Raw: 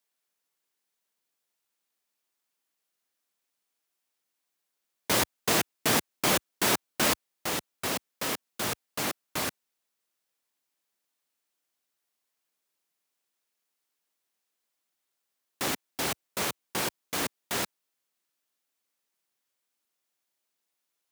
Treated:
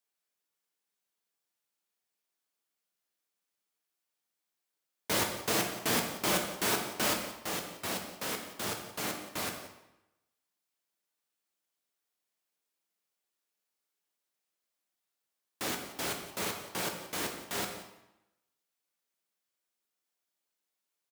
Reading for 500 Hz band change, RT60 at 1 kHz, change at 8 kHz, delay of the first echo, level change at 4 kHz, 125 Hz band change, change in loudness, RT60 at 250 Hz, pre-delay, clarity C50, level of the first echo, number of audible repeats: -3.0 dB, 0.90 s, -4.5 dB, 177 ms, -4.0 dB, -4.0 dB, -4.0 dB, 0.90 s, 7 ms, 6.0 dB, -14.5 dB, 1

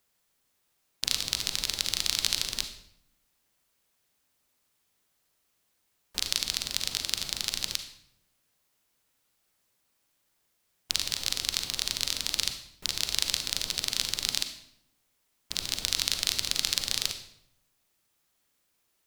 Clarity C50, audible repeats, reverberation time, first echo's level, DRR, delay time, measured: 8.5 dB, no echo, 0.75 s, no echo, 7.0 dB, no echo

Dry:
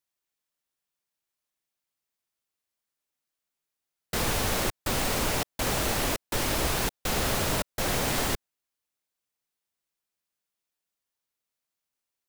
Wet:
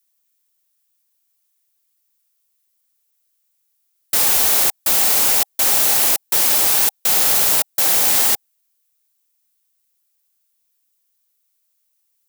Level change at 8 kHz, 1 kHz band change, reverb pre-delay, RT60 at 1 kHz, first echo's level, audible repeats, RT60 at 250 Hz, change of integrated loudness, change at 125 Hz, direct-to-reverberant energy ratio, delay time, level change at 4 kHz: +15.0 dB, +5.0 dB, no reverb, no reverb, no echo, no echo, no reverb, +14.5 dB, no reading, no reverb, no echo, +9.5 dB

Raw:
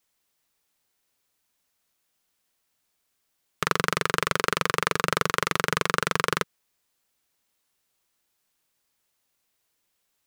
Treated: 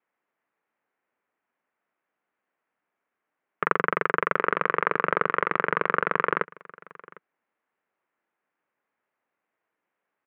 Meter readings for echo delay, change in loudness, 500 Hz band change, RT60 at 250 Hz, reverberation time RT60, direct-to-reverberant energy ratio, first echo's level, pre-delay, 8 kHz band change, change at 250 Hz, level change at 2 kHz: 754 ms, 0.0 dB, +1.5 dB, no reverb, no reverb, no reverb, -22.5 dB, no reverb, under -40 dB, -1.5 dB, +0.5 dB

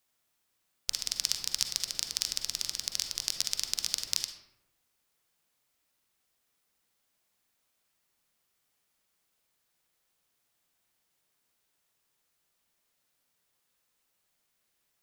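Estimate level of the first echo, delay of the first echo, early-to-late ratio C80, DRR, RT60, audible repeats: no echo, no echo, 9.5 dB, 6.0 dB, 0.90 s, no echo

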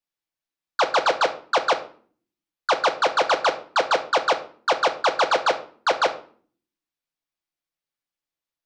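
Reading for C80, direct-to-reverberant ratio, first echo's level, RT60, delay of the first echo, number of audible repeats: 18.0 dB, 4.5 dB, no echo, 0.50 s, no echo, no echo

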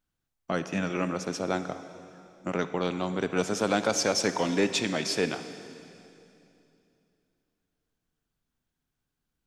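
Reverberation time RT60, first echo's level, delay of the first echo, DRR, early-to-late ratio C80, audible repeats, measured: 2.8 s, no echo, no echo, 10.5 dB, 11.5 dB, no echo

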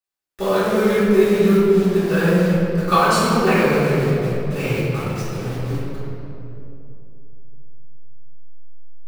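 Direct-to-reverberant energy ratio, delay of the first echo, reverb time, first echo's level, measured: -12.0 dB, no echo, 2.9 s, no echo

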